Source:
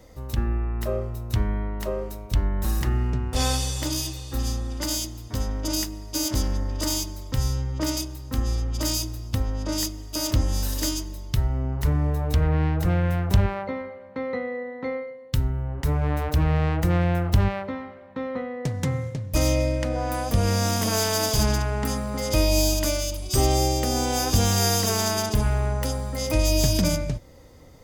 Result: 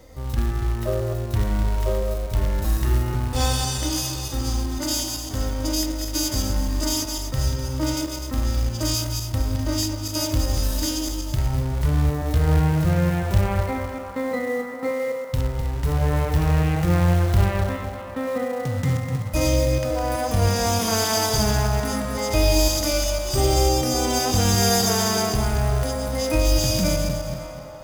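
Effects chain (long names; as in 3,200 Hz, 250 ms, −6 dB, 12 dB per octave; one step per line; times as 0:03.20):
feedback delay that plays each chunk backwards 126 ms, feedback 54%, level −5.5 dB
in parallel at −3 dB: downward compressor 5 to 1, threshold −28 dBFS, peak gain reduction 15 dB
on the sum: floating-point word with a short mantissa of 2 bits
on a send: feedback echo with a band-pass in the loop 554 ms, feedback 76%, band-pass 980 Hz, level −11 dB
on the sum: harmonic and percussive parts rebalanced percussive −9 dB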